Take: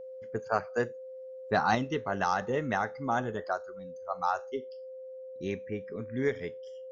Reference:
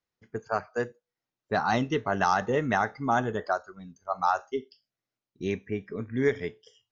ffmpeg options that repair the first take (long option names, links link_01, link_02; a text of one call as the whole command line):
ffmpeg -i in.wav -af "bandreject=frequency=520:width=30,asetnsamples=nb_out_samples=441:pad=0,asendcmd='1.75 volume volume 4.5dB',volume=0dB" out.wav